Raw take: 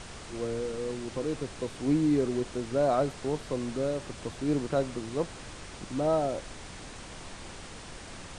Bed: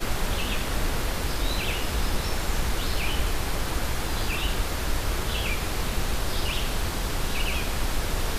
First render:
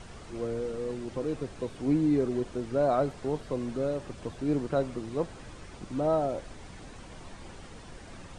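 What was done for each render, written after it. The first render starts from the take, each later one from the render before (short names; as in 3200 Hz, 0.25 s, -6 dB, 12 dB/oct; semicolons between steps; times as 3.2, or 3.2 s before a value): denoiser 8 dB, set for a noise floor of -45 dBFS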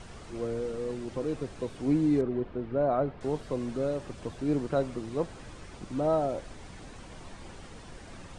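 2.21–3.21 air absorption 390 m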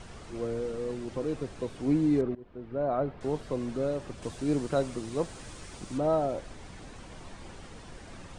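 2.35–3.37 fade in equal-power, from -22.5 dB; 4.22–5.98 high shelf 4800 Hz +11 dB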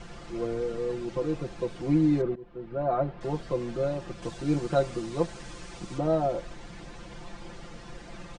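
LPF 6900 Hz 12 dB/oct; comb 5.8 ms, depth 88%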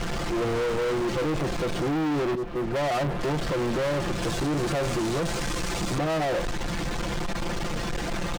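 limiter -23.5 dBFS, peak gain reduction 11.5 dB; sample leveller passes 5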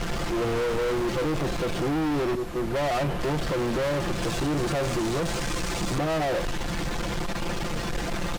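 add bed -15 dB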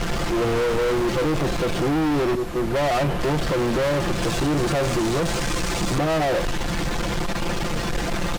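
gain +4.5 dB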